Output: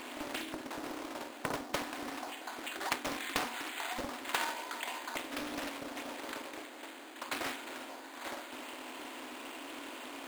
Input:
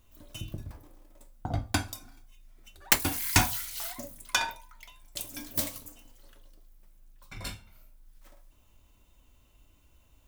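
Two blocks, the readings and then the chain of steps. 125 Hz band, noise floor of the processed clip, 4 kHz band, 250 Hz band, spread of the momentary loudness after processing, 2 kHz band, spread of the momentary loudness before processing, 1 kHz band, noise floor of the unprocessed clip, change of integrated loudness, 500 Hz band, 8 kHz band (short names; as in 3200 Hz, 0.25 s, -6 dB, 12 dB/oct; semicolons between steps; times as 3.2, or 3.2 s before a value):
-19.5 dB, -49 dBFS, -5.0 dB, -1.5 dB, 9 LU, -3.0 dB, 22 LU, -1.0 dB, -62 dBFS, -9.0 dB, +3.5 dB, -10.5 dB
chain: per-bin compression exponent 0.6; notches 60/120/180/240/300 Hz; delay with a stepping band-pass 0.243 s, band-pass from 410 Hz, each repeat 0.7 oct, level -12 dB; compressor 3:1, threshold -40 dBFS, peak gain reduction 18.5 dB; FFT band-pass 230–3900 Hz; air absorption 190 m; careless resampling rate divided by 8×, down none, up hold; Doppler distortion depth 0.97 ms; gain +8.5 dB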